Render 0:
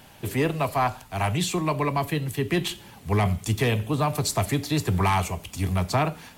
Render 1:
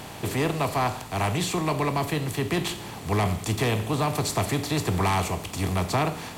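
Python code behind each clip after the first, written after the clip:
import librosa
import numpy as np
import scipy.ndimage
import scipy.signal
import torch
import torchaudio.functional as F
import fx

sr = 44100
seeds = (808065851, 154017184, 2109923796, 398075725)

y = fx.bin_compress(x, sr, power=0.6)
y = y * 10.0 ** (-4.0 / 20.0)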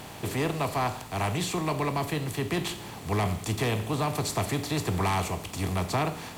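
y = fx.dmg_noise_colour(x, sr, seeds[0], colour='white', level_db=-59.0)
y = y * 10.0 ** (-3.0 / 20.0)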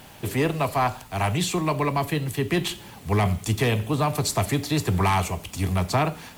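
y = fx.bin_expand(x, sr, power=1.5)
y = y * 10.0 ** (7.5 / 20.0)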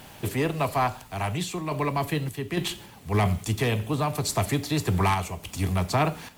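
y = fx.tremolo_random(x, sr, seeds[1], hz=3.5, depth_pct=55)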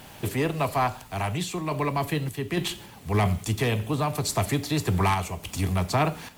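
y = fx.recorder_agc(x, sr, target_db=-18.5, rise_db_per_s=5.7, max_gain_db=30)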